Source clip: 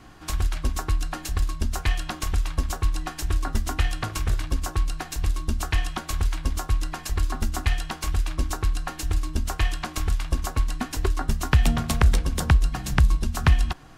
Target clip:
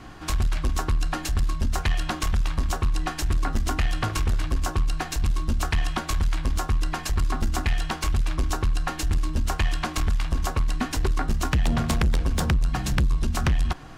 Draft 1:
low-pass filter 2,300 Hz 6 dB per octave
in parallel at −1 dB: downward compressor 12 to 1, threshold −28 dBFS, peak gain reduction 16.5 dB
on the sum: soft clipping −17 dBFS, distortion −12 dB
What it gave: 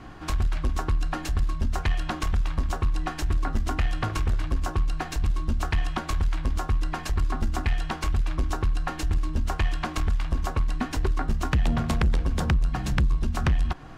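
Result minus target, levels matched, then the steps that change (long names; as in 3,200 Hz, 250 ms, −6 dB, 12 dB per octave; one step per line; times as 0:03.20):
downward compressor: peak gain reduction +8 dB; 8,000 Hz band −6.0 dB
change: low-pass filter 6,300 Hz 6 dB per octave
change: downward compressor 12 to 1, threshold −19 dBFS, peak gain reduction 8 dB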